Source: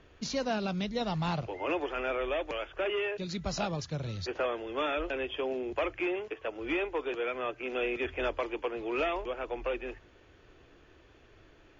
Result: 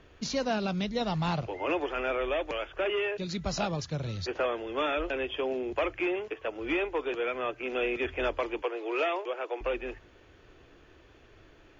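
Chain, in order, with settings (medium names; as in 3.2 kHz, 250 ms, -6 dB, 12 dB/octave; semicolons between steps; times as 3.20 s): 8.62–9.61 s: steep high-pass 330 Hz 36 dB/octave; trim +2 dB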